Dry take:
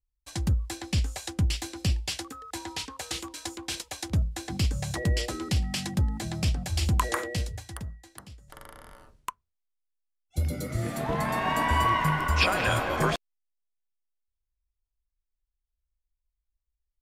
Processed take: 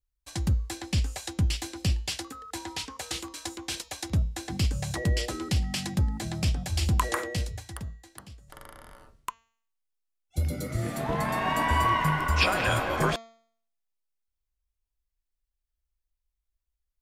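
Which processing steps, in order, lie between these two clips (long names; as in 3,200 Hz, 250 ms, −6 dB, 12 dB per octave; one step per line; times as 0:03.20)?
hum removal 227.3 Hz, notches 32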